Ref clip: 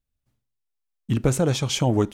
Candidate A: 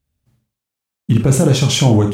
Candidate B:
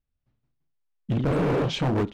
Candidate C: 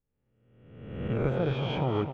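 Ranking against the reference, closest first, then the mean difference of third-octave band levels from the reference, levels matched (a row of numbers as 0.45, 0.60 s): A, B, C; 4.5, 6.5, 9.0 dB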